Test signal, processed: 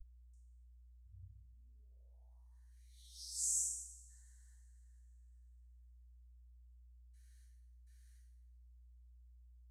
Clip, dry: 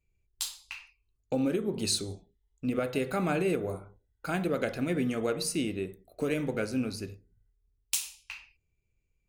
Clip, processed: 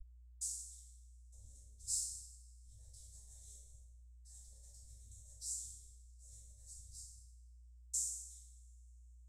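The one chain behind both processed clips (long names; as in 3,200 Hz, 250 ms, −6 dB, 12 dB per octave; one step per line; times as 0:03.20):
cochlear-implant simulation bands 12
coupled-rooms reverb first 0.84 s, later 2.8 s, from −25 dB, DRR −6.5 dB
mains hum 60 Hz, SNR 24 dB
inverse Chebyshev band-stop filter 150–2,800 Hz, stop band 70 dB
high-shelf EQ 5,600 Hz −8.5 dB
level +13.5 dB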